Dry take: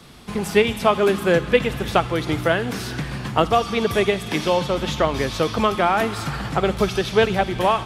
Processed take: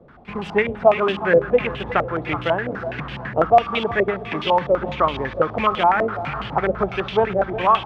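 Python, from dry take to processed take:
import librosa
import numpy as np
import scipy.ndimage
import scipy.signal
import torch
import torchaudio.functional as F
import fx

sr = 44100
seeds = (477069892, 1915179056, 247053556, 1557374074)

y = fx.quant_float(x, sr, bits=2)
y = fx.echo_thinned(y, sr, ms=364, feedback_pct=57, hz=420.0, wet_db=-12)
y = fx.filter_held_lowpass(y, sr, hz=12.0, low_hz=560.0, high_hz=3000.0)
y = y * 10.0 ** (-4.5 / 20.0)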